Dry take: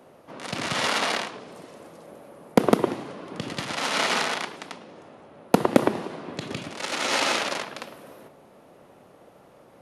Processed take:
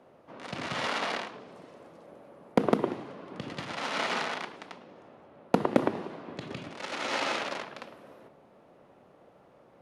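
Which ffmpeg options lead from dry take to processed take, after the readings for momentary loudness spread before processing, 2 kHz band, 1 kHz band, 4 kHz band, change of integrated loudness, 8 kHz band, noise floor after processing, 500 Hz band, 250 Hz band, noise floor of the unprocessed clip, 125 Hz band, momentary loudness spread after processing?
20 LU, -6.5 dB, -5.5 dB, -9.0 dB, -6.5 dB, -13.0 dB, -59 dBFS, -5.5 dB, -5.5 dB, -53 dBFS, -5.5 dB, 23 LU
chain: -af "aemphasis=mode=reproduction:type=50fm,bandreject=f=52.34:t=h:w=4,bandreject=f=104.68:t=h:w=4,bandreject=f=157.02:t=h:w=4,bandreject=f=209.36:t=h:w=4,bandreject=f=261.7:t=h:w=4,bandreject=f=314.04:t=h:w=4,bandreject=f=366.38:t=h:w=4,bandreject=f=418.72:t=h:w=4,bandreject=f=471.06:t=h:w=4,volume=-5.5dB"

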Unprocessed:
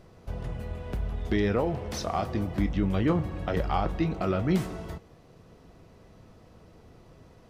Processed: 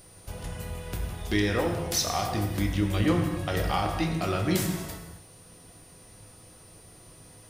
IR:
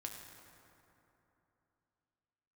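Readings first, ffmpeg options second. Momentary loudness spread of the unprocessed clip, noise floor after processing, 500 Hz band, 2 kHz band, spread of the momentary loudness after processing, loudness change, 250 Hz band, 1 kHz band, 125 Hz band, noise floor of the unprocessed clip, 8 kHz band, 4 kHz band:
11 LU, -52 dBFS, -0.5 dB, +5.0 dB, 14 LU, +1.0 dB, 0.0 dB, +1.0 dB, +1.0 dB, -55 dBFS, +13.5 dB, +9.0 dB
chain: -filter_complex "[0:a]crystalizer=i=6:c=0,aeval=exprs='val(0)+0.00316*sin(2*PI*9300*n/s)':c=same[a];[1:a]atrim=start_sample=2205,afade=t=out:st=0.32:d=0.01,atrim=end_sample=14553[b];[a][b]afir=irnorm=-1:irlink=0,volume=1.5dB"

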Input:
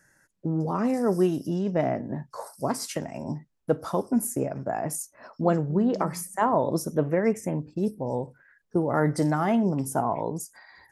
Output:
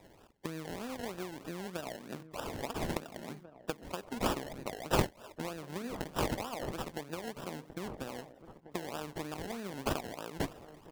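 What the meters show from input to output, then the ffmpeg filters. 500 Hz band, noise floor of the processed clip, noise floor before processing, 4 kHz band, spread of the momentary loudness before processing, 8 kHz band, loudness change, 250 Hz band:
-12.5 dB, -60 dBFS, -68 dBFS, +1.5 dB, 11 LU, -10.5 dB, -12.0 dB, -14.5 dB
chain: -filter_complex "[0:a]aeval=exprs='if(lt(val(0),0),0.251*val(0),val(0))':c=same,highpass=140,equalizer=f=620:w=0.41:g=5.5,acompressor=threshold=-35dB:ratio=6,aeval=exprs='0.0944*(cos(1*acos(clip(val(0)/0.0944,-1,1)))-cos(1*PI/2))+0.015*(cos(3*acos(clip(val(0)/0.0944,-1,1)))-cos(3*PI/2))':c=same,aexciter=amount=7.9:drive=6.4:freq=6.4k,acrusher=samples=29:mix=1:aa=0.000001:lfo=1:lforange=17.4:lforate=3.2,asplit=2[a][b];[b]adelay=1691,volume=-12dB,highshelf=f=4k:g=-38[c];[a][c]amix=inputs=2:normalize=0,volume=1dB"

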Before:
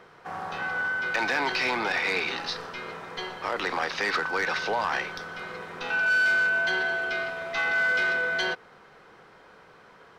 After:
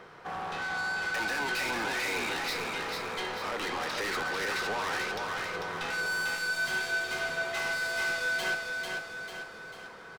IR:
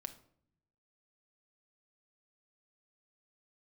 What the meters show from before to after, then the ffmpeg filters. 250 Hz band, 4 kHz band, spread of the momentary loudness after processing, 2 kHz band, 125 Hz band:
-2.5 dB, -1.5 dB, 8 LU, -5.0 dB, -1.0 dB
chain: -filter_complex "[0:a]asoftclip=type=tanh:threshold=-33.5dB,asplit=2[a][b];[b]aecho=0:1:445|890|1335|1780|2225|2670|3115:0.631|0.322|0.164|0.0837|0.0427|0.0218|0.0111[c];[a][c]amix=inputs=2:normalize=0,volume=2dB"

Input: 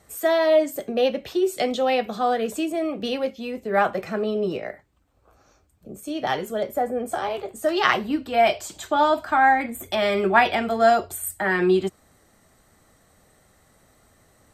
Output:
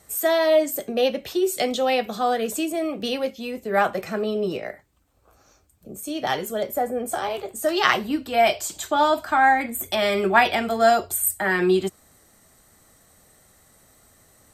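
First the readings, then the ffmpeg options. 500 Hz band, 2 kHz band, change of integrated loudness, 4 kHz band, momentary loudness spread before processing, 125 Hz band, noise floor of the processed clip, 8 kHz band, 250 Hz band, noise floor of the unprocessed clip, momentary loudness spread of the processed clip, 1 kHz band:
0.0 dB, +1.0 dB, +0.5 dB, +2.5 dB, 10 LU, -0.5 dB, -59 dBFS, +7.0 dB, -0.5 dB, -60 dBFS, 10 LU, 0.0 dB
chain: -af "aemphasis=mode=production:type=cd"

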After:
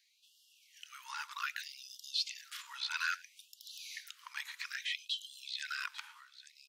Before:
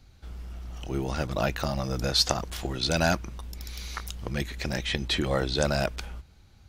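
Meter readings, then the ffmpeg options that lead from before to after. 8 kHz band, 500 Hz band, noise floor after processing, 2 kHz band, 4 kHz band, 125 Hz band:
-12.5 dB, under -40 dB, -68 dBFS, -6.0 dB, -9.0 dB, under -40 dB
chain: -filter_complex "[0:a]asplit=2[a][b];[b]aecho=0:1:847:0.106[c];[a][c]amix=inputs=2:normalize=0,acrossover=split=3800[d][e];[e]acompressor=threshold=-41dB:ratio=4:attack=1:release=60[f];[d][f]amix=inputs=2:normalize=0,asplit=2[g][h];[h]aecho=0:1:113:0.0841[i];[g][i]amix=inputs=2:normalize=0,afftfilt=real='re*gte(b*sr/1024,820*pow(2800/820,0.5+0.5*sin(2*PI*0.62*pts/sr)))':imag='im*gte(b*sr/1024,820*pow(2800/820,0.5+0.5*sin(2*PI*0.62*pts/sr)))':win_size=1024:overlap=0.75,volume=-4.5dB"

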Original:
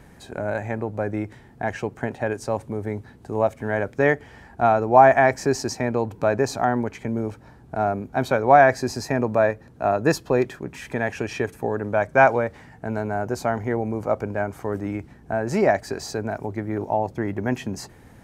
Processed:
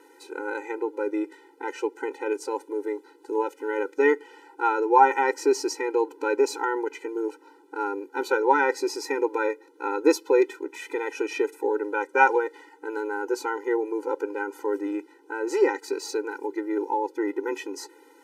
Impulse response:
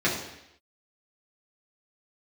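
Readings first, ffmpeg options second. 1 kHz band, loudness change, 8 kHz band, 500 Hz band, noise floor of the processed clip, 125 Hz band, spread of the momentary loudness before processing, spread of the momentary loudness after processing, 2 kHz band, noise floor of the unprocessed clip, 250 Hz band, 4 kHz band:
-3.5 dB, -3.5 dB, -1.5 dB, -3.0 dB, -55 dBFS, under -40 dB, 14 LU, 13 LU, -2.5 dB, -49 dBFS, -3.0 dB, -1.5 dB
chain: -af "afftfilt=real='re*eq(mod(floor(b*sr/1024/260),2),1)':imag='im*eq(mod(floor(b*sr/1024/260),2),1)':win_size=1024:overlap=0.75,volume=2dB"

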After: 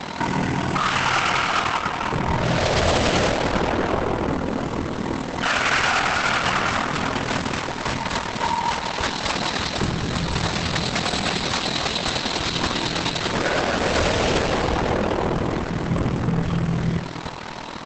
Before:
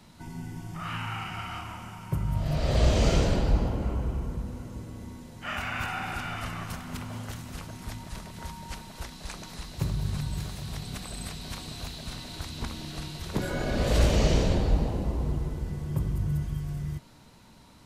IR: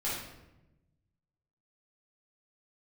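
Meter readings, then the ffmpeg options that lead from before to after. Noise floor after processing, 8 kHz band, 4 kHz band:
-31 dBFS, +10.5 dB, +14.0 dB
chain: -filter_complex "[0:a]asplit=2[a][b];[1:a]atrim=start_sample=2205[c];[b][c]afir=irnorm=-1:irlink=0,volume=-23.5dB[d];[a][d]amix=inputs=2:normalize=0,aeval=exprs='val(0)*sin(2*PI*20*n/s)':c=same,highshelf=f=4.4k:g=-11,asplit=2[e][f];[f]highpass=f=720:p=1,volume=42dB,asoftclip=type=tanh:threshold=-11dB[g];[e][g]amix=inputs=2:normalize=0,lowpass=f=5.3k:p=1,volume=-6dB,asplit=2[h][i];[i]adelay=453,lowpass=f=1.2k:p=1,volume=-23dB,asplit=2[j][k];[k]adelay=453,lowpass=f=1.2k:p=1,volume=0.17[l];[h][j][l]amix=inputs=3:normalize=0" -ar 48000 -c:a libopus -b:a 10k

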